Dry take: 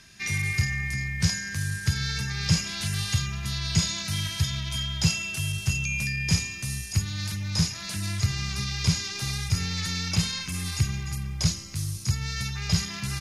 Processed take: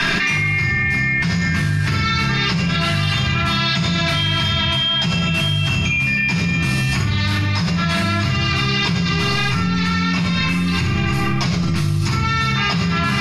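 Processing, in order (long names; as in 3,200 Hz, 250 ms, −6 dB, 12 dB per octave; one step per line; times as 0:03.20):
three-way crossover with the lows and the highs turned down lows −14 dB, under 230 Hz, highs −20 dB, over 3,500 Hz
rectangular room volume 780 cubic metres, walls furnished, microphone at 9.2 metres
envelope flattener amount 100%
level −5 dB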